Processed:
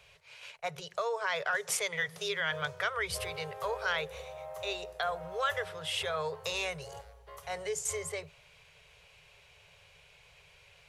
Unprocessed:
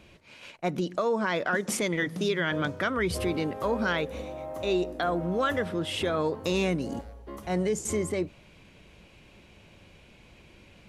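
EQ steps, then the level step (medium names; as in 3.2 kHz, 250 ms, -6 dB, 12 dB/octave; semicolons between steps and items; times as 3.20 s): Chebyshev band-stop 160–410 Hz, order 4; tilt shelf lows -4 dB, about 1.1 kHz; bass shelf 250 Hz -3.5 dB; -3.0 dB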